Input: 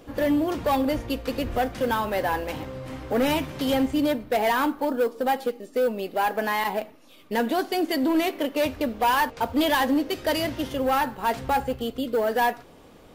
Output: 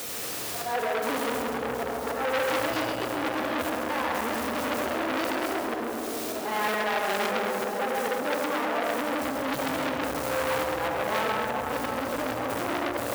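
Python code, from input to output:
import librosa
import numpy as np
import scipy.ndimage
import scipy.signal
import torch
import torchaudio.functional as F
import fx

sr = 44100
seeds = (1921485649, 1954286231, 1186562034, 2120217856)

p1 = np.flip(x).copy()
p2 = fx.high_shelf(p1, sr, hz=5300.0, db=-5.0)
p3 = fx.small_body(p2, sr, hz=(490.0, 700.0, 1200.0), ring_ms=20, db=9)
p4 = fx.quant_dither(p3, sr, seeds[0], bits=6, dither='triangular')
p5 = fx.auto_swell(p4, sr, attack_ms=414.0)
p6 = scipy.signal.sosfilt(scipy.signal.butter(4, 64.0, 'highpass', fs=sr, output='sos'), p5)
p7 = fx.over_compress(p6, sr, threshold_db=-24.0, ratio=-1.0)
p8 = p7 + fx.echo_single(p7, sr, ms=136, db=-7.0, dry=0)
p9 = fx.rev_freeverb(p8, sr, rt60_s=4.7, hf_ratio=0.35, predelay_ms=20, drr_db=-1.5)
p10 = fx.transformer_sat(p9, sr, knee_hz=2700.0)
y = p10 * 10.0 ** (-3.0 / 20.0)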